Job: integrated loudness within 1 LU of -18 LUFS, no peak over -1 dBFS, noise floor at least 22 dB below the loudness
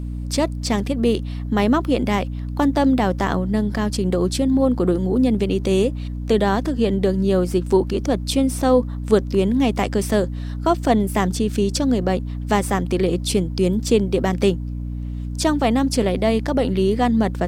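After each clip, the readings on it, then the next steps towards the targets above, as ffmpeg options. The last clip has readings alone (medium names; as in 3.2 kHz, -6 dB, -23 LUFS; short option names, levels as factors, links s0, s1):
hum 60 Hz; highest harmonic 300 Hz; hum level -25 dBFS; loudness -20.0 LUFS; peak level -3.5 dBFS; loudness target -18.0 LUFS
-> -af "bandreject=f=60:t=h:w=4,bandreject=f=120:t=h:w=4,bandreject=f=180:t=h:w=4,bandreject=f=240:t=h:w=4,bandreject=f=300:t=h:w=4"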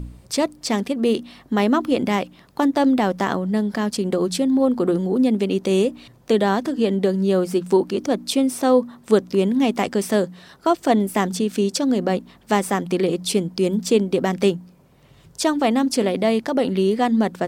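hum not found; loudness -20.5 LUFS; peak level -4.0 dBFS; loudness target -18.0 LUFS
-> -af "volume=1.33"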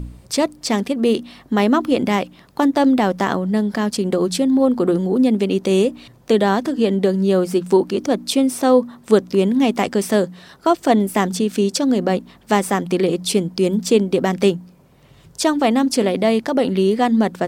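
loudness -18.0 LUFS; peak level -1.5 dBFS; noise floor -49 dBFS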